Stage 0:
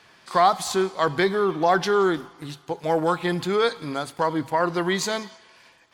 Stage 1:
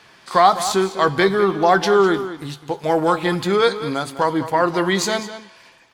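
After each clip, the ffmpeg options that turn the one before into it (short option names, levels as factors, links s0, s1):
-filter_complex "[0:a]asplit=2[s0][s1];[s1]adelay=15,volume=0.251[s2];[s0][s2]amix=inputs=2:normalize=0,asplit=2[s3][s4];[s4]adelay=204.1,volume=0.251,highshelf=f=4000:g=-4.59[s5];[s3][s5]amix=inputs=2:normalize=0,volume=1.68"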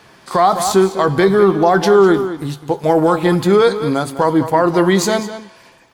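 -af "equalizer=f=3000:w=0.38:g=-8,alimiter=limit=0.282:level=0:latency=1:release=39,volume=2.51"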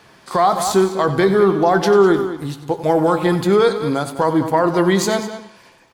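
-filter_complex "[0:a]asplit=2[s0][s1];[s1]adelay=93.29,volume=0.224,highshelf=f=4000:g=-2.1[s2];[s0][s2]amix=inputs=2:normalize=0,volume=0.75"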